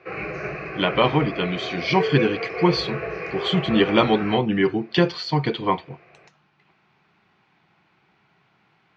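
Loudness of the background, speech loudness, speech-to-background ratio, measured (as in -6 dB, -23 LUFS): -30.0 LUFS, -22.0 LUFS, 8.0 dB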